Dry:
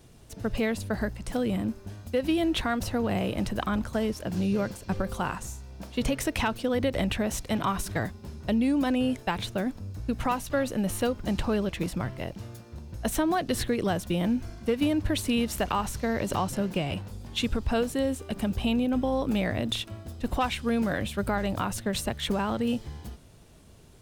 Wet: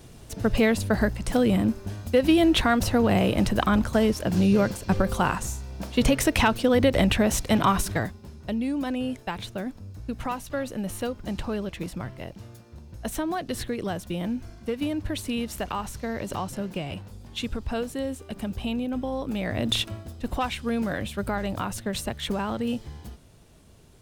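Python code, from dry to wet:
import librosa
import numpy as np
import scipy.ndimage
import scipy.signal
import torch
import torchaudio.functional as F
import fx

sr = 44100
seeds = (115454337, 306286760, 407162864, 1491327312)

y = fx.gain(x, sr, db=fx.line((7.77, 6.5), (8.3, -3.0), (19.38, -3.0), (19.81, 7.0), (20.13, -0.5)))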